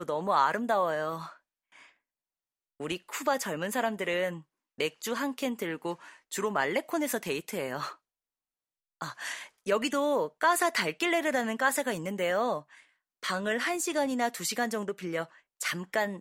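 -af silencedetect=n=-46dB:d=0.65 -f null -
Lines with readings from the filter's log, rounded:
silence_start: 1.85
silence_end: 2.80 | silence_duration: 0.95
silence_start: 7.94
silence_end: 9.01 | silence_duration: 1.07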